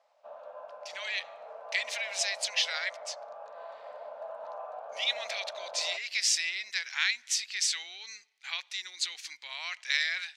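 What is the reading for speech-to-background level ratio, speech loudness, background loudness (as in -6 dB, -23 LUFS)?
13.0 dB, -31.0 LUFS, -44.0 LUFS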